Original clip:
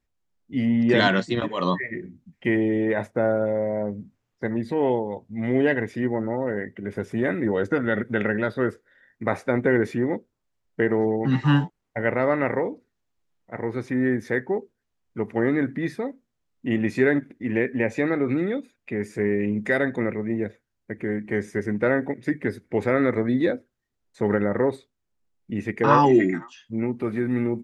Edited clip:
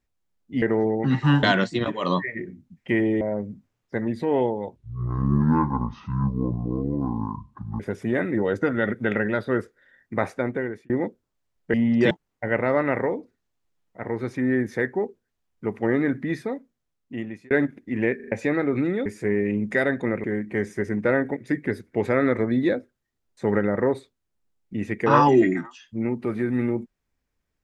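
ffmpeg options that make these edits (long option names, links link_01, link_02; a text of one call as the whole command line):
ffmpeg -i in.wav -filter_complex "[0:a]asplit=16[link_01][link_02][link_03][link_04][link_05][link_06][link_07][link_08][link_09][link_10][link_11][link_12][link_13][link_14][link_15][link_16];[link_01]atrim=end=0.622[link_17];[link_02]atrim=start=10.828:end=11.642[link_18];[link_03]atrim=start=0.988:end=2.772[link_19];[link_04]atrim=start=3.698:end=5.254[link_20];[link_05]atrim=start=5.25:end=6.89,asetpts=PTS-STARTPTS,asetrate=23814,aresample=44100,atrim=end_sample=133933,asetpts=PTS-STARTPTS[link_21];[link_06]atrim=start=6.886:end=9.99,asetpts=PTS-STARTPTS,afade=type=out:start_time=2.424:duration=0.68[link_22];[link_07]atrim=start=9.99:end=10.832,asetpts=PTS-STARTPTS,afade=type=in:duration=0.004:curve=hsin[link_23];[link_08]atrim=start=0.618:end=0.992[link_24];[link_09]atrim=start=11.638:end=17.04,asetpts=PTS-STARTPTS,afade=type=out:start_time=4.242:duration=1.16:curve=qsin[link_25];[link_10]atrim=start=17.04:end=17.732,asetpts=PTS-STARTPTS,afade=type=in:duration=0.004:curve=hsin[link_26];[link_11]atrim=start=17.688:end=17.732[link_27];[link_12]atrim=start=17.688:end=17.732[link_28];[link_13]atrim=start=17.688:end=17.732[link_29];[link_14]atrim=start=17.848:end=18.592[link_30];[link_15]atrim=start=18.998:end=20.182[link_31];[link_16]atrim=start=21.008[link_32];[link_17][link_18]acrossfade=duration=0.004:curve1=hsin:curve2=hsin[link_33];[link_33][link_19]acrossfade=duration=0.004:curve1=hsin:curve2=hsin[link_34];[link_34][link_20]acrossfade=duration=0.004:curve1=hsin:curve2=hsin[link_35];[link_35][link_21]acrossfade=duration=0.004:curve1=hsin:curve2=hsin[link_36];[link_22][link_23]concat=n=2:v=0:a=1[link_37];[link_36][link_37]acrossfade=duration=0.004:curve1=hsin:curve2=hsin[link_38];[link_38][link_24]acrossfade=duration=0.004:curve1=hsin:curve2=hsin[link_39];[link_25][link_26]concat=n=2:v=0:a=1[link_40];[link_39][link_40]acrossfade=duration=0.004:curve1=hsin:curve2=hsin[link_41];[link_41][link_27]acrossfade=duration=0.004:curve1=hsin:curve2=hsin[link_42];[link_42][link_28]acrossfade=duration=0.004:curve1=hsin:curve2=hsin[link_43];[link_43][link_29]acrossfade=duration=0.004:curve1=hsin:curve2=hsin[link_44];[link_44][link_30]acrossfade=duration=0.004:curve1=hsin:curve2=hsin[link_45];[link_45][link_31]acrossfade=duration=0.004:curve1=hsin:curve2=hsin[link_46];[link_46][link_32]acrossfade=duration=0.004:curve1=hsin:curve2=hsin" out.wav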